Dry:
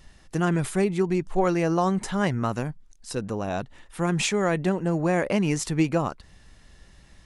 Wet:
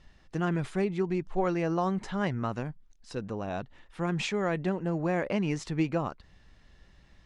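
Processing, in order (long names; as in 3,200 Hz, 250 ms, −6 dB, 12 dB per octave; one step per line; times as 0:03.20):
low-pass filter 4,700 Hz 12 dB per octave
level −5.5 dB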